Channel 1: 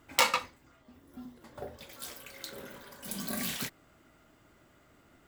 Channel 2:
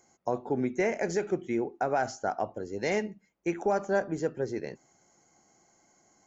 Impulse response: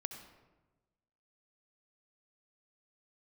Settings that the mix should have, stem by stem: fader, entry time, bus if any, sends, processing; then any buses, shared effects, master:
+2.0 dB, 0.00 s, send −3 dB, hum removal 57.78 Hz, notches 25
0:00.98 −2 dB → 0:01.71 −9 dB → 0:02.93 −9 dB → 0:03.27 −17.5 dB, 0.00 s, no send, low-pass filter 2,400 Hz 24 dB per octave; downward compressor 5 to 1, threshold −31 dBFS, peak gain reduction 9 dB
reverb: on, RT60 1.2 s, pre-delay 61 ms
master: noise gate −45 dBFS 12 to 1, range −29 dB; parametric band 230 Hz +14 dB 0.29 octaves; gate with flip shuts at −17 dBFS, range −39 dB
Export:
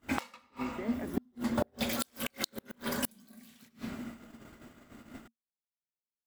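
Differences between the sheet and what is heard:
stem 1 +2.0 dB → +11.0 dB
stem 2 −2.0 dB → −8.0 dB

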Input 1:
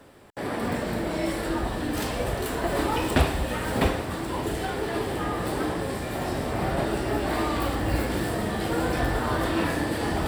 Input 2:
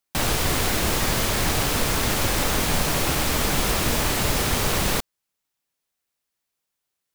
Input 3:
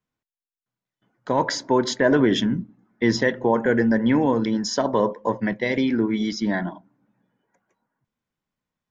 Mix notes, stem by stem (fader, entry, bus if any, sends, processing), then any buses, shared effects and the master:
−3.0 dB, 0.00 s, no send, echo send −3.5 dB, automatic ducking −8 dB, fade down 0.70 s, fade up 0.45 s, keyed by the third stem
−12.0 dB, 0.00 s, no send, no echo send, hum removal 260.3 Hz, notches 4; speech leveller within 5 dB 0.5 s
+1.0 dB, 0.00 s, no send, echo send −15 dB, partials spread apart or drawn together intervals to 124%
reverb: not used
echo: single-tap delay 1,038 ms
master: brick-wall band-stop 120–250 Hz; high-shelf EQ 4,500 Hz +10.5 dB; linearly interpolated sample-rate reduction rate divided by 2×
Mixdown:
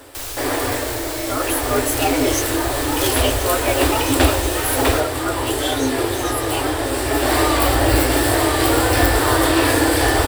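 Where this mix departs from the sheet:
stem 1 −3.0 dB → +8.5 dB
master: missing linearly interpolated sample-rate reduction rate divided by 2×

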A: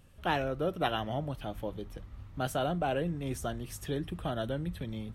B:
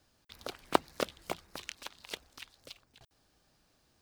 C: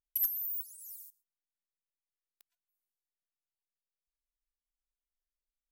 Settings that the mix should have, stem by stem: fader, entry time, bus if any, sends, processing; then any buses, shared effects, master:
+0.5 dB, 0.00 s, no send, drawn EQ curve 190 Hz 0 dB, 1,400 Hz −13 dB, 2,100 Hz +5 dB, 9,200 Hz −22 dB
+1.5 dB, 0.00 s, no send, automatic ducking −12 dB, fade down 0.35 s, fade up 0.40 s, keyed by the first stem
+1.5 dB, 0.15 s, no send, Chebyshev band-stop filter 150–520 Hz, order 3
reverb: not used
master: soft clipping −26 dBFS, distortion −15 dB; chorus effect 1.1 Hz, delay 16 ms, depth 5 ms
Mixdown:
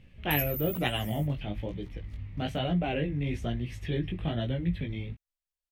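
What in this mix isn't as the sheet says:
stem A +0.5 dB → +9.0 dB
stem B +1.5 dB → −9.0 dB
master: missing soft clipping −26 dBFS, distortion −15 dB

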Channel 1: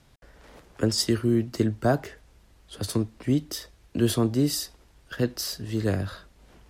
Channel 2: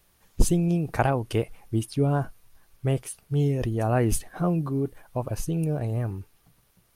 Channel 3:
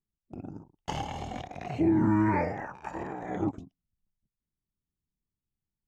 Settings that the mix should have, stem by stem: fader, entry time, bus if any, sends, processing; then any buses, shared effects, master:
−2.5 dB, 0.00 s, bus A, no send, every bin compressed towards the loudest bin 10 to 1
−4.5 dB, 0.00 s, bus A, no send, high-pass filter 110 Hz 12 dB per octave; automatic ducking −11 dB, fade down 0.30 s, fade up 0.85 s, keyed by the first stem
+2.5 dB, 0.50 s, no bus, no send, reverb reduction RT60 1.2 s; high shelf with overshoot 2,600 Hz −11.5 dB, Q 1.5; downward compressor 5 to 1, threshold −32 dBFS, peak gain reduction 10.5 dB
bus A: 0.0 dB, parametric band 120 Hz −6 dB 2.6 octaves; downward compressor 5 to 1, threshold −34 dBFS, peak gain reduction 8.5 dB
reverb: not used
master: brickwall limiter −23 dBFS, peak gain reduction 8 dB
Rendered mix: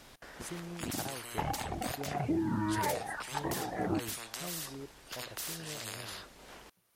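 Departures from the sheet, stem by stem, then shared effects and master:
stem 1 −2.5 dB → −11.0 dB
master: missing brickwall limiter −23 dBFS, peak gain reduction 8 dB

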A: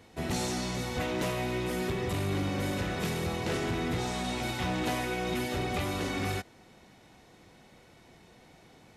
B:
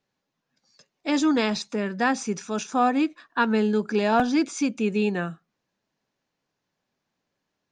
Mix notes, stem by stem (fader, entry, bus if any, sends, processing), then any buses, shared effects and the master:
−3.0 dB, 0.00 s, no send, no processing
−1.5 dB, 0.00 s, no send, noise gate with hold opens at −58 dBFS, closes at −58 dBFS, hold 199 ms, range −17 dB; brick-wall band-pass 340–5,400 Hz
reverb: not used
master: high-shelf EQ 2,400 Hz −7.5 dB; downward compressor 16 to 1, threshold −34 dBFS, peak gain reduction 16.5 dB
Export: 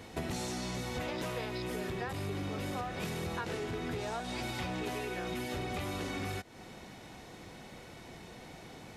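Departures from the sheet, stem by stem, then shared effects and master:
stem A −3.0 dB → +7.0 dB
master: missing high-shelf EQ 2,400 Hz −7.5 dB

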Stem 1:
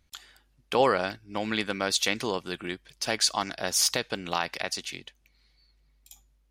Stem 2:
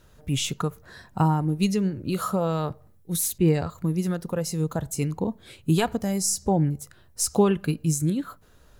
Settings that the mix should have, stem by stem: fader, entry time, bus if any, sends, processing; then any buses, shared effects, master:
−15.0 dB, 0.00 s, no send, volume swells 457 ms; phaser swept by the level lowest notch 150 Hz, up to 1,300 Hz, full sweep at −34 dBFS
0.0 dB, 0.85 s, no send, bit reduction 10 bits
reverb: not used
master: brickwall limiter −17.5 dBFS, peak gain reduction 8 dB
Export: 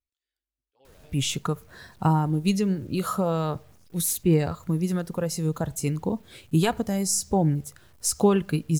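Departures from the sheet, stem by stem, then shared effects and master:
stem 1 −15.0 dB → −24.0 dB
master: missing brickwall limiter −17.5 dBFS, peak gain reduction 8 dB

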